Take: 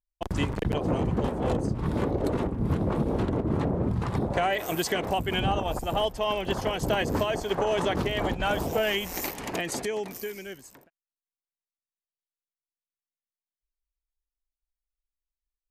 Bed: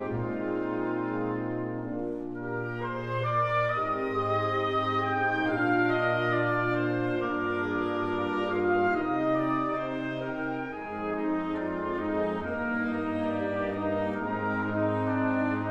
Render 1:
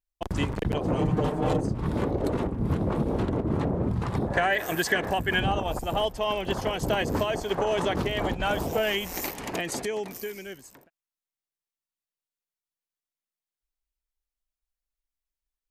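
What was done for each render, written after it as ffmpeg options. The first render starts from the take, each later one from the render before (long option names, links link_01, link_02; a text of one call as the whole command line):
ffmpeg -i in.wav -filter_complex "[0:a]asettb=1/sr,asplit=3[link_01][link_02][link_03];[link_01]atrim=end=0.974[link_04];[link_02]atrim=start=0.97:end=1.61,asetpts=PTS-STARTPTS,afade=type=in:duration=0.004:curve=qsin,afade=type=out:start_time=0.636:duration=0.004:curve=qsin,aecho=1:1:6.6:0.85,atrim=end_sample=28224[link_05];[link_03]atrim=start=1.606[link_06];[link_04][link_05]acrossfade=duration=0.004:curve1=hsin:curve2=qsin[link_07];[link_07][link_06]acrossfade=duration=0.004:curve1=qsin:curve2=hsin,asettb=1/sr,asplit=3[link_08][link_09][link_10];[link_08]atrim=end=4.274[link_11];[link_09]atrim=start=4.27:end=5.43,asetpts=PTS-STARTPTS,afade=type=in:duration=0.004:curve=qsin,afade=type=out:start_time=1.156:duration=0.004:curve=qsin,equalizer=frequency=1700:width=6:gain=13.5[link_12];[link_10]atrim=start=5.426[link_13];[link_11][link_12]acrossfade=duration=0.004:curve1=hsin:curve2=qsin[link_14];[link_14][link_13]acrossfade=duration=0.004:curve1=qsin:curve2=hsin" out.wav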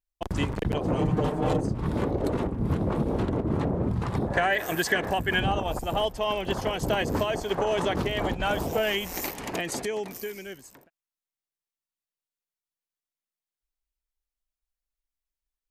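ffmpeg -i in.wav -af anull out.wav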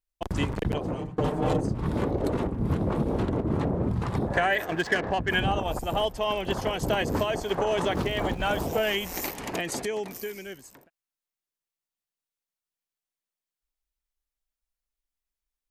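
ffmpeg -i in.wav -filter_complex "[0:a]asplit=3[link_01][link_02][link_03];[link_01]afade=type=out:start_time=4.64:duration=0.02[link_04];[link_02]adynamicsmooth=sensitivity=2.5:basefreq=1800,afade=type=in:start_time=4.64:duration=0.02,afade=type=out:start_time=5.28:duration=0.02[link_05];[link_03]afade=type=in:start_time=5.28:duration=0.02[link_06];[link_04][link_05][link_06]amix=inputs=3:normalize=0,asettb=1/sr,asplit=3[link_07][link_08][link_09];[link_07]atrim=end=7.854[link_10];[link_08]atrim=start=7.85:end=8.61,asetpts=PTS-STARTPTS,afade=type=in:duration=0.004:curve=qsin,afade=type=out:start_time=0.756:duration=0.004:curve=qsin,aeval=exprs='val(0)*gte(abs(val(0)),0.00473)':channel_layout=same[link_11];[link_09]atrim=start=8.606[link_12];[link_10][link_11]acrossfade=duration=0.004:curve1=hsin:curve2=qsin[link_13];[link_13][link_12]acrossfade=duration=0.004:curve1=qsin:curve2=hsin,asplit=2[link_14][link_15];[link_14]atrim=end=1.18,asetpts=PTS-STARTPTS,afade=type=out:start_time=0.69:duration=0.49:silence=0.0630957[link_16];[link_15]atrim=start=1.18,asetpts=PTS-STARTPTS,afade=type=in:duration=0.004:curve=hsin:silence=0.0630957[link_17];[link_16][link_17]concat=n=2:v=0:a=1" out.wav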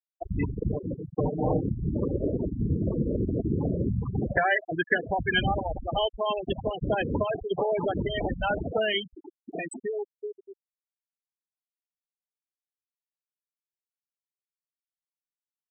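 ffmpeg -i in.wav -af "afftfilt=real='re*gte(hypot(re,im),0.126)':imag='im*gte(hypot(re,im),0.126)':win_size=1024:overlap=0.75,highshelf=frequency=3800:gain=10.5" out.wav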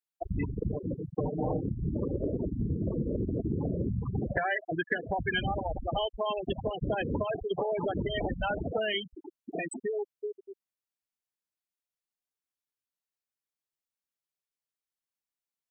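ffmpeg -i in.wav -af "acompressor=threshold=-28dB:ratio=3" out.wav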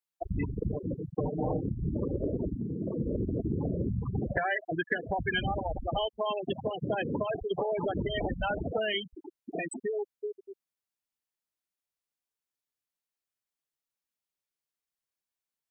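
ffmpeg -i in.wav -filter_complex "[0:a]asettb=1/sr,asplit=3[link_01][link_02][link_03];[link_01]atrim=end=2.564[link_04];[link_02]atrim=start=2.56:end=3,asetpts=PTS-STARTPTS,afade=type=in:duration=0.004:curve=qsin,afade=type=out:start_time=0.436:duration=0.004:curve=qsin,highpass=160[link_05];[link_03]atrim=start=2.996[link_06];[link_04][link_05]acrossfade=duration=0.004:curve1=hsin:curve2=qsin[link_07];[link_07][link_06]acrossfade=duration=0.004:curve1=qsin:curve2=hsin,asettb=1/sr,asplit=3[link_08][link_09][link_10];[link_08]atrim=end=6.084[link_11];[link_09]atrim=start=6.08:end=7.26,asetpts=PTS-STARTPTS,afade=type=in:duration=0.004:curve=qsin,afade=type=out:start_time=1.176:duration=0.004:curve=qsin,highpass=frequency=110:width=0.5412,highpass=frequency=110:width=1.3066[link_12];[link_10]atrim=start=7.256[link_13];[link_11][link_12]acrossfade=duration=0.004:curve1=hsin:curve2=qsin[link_14];[link_14][link_13]acrossfade=duration=0.004:curve1=qsin:curve2=hsin" out.wav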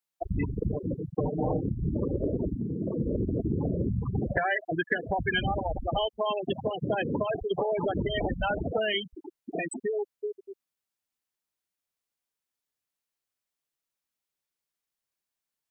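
ffmpeg -i in.wav -af "volume=2.5dB" out.wav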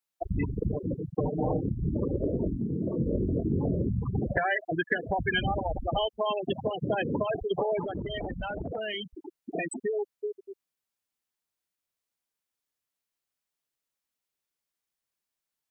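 ffmpeg -i in.wav -filter_complex "[0:a]asettb=1/sr,asplit=3[link_01][link_02][link_03];[link_01]atrim=end=2.294[link_04];[link_02]atrim=start=2.29:end=3.79,asetpts=PTS-STARTPTS,afade=type=in:duration=0.004:curve=qsin,afade=type=out:start_time=1.496:duration=0.004:curve=qsin,asplit=2[link_05][link_06];[link_06]adelay=22,volume=-6.5dB[link_07];[link_05][link_07]amix=inputs=2:normalize=0,atrim=end_sample=66150[link_08];[link_03]atrim=start=3.786[link_09];[link_04][link_08]acrossfade=duration=0.004:curve1=hsin:curve2=qsin[link_10];[link_10][link_09]acrossfade=duration=0.004:curve1=qsin:curve2=hsin,asplit=3[link_11][link_12][link_13];[link_11]afade=type=out:start_time=7.8:duration=0.02[link_14];[link_12]acompressor=threshold=-30dB:ratio=6:attack=3.2:release=140:knee=1:detection=peak,afade=type=in:start_time=7.8:duration=0.02,afade=type=out:start_time=8.99:duration=0.02[link_15];[link_13]afade=type=in:start_time=8.99:duration=0.02[link_16];[link_14][link_15][link_16]amix=inputs=3:normalize=0" out.wav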